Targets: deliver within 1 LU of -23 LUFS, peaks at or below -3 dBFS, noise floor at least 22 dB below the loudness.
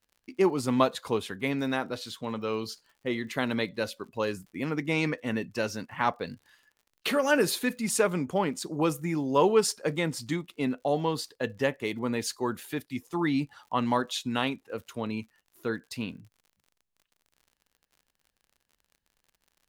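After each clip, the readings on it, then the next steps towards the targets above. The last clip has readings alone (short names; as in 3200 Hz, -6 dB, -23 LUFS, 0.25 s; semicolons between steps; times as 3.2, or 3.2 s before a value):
ticks 50/s; loudness -29.5 LUFS; peak -7.5 dBFS; loudness target -23.0 LUFS
-> de-click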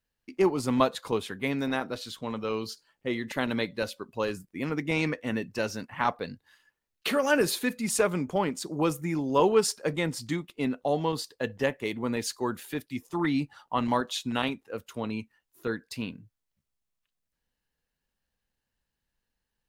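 ticks 0/s; loudness -29.5 LUFS; peak -7.5 dBFS; loudness target -23.0 LUFS
-> gain +6.5 dB; limiter -3 dBFS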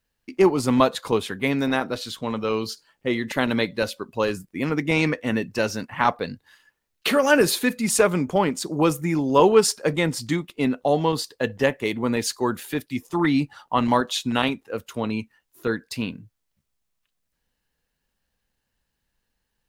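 loudness -23.0 LUFS; peak -3.0 dBFS; noise floor -78 dBFS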